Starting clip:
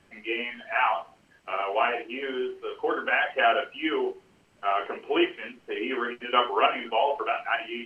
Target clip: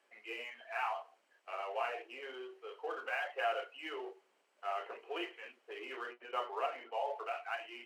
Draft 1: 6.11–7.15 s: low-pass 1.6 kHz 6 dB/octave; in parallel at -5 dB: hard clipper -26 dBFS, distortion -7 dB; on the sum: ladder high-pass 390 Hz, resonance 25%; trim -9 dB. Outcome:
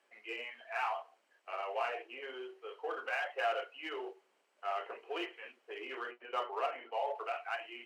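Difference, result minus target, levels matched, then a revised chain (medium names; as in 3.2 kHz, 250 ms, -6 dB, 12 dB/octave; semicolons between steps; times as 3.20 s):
hard clipper: distortion -5 dB
6.11–7.15 s: low-pass 1.6 kHz 6 dB/octave; in parallel at -5 dB: hard clipper -35.5 dBFS, distortion -2 dB; on the sum: ladder high-pass 390 Hz, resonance 25%; trim -9 dB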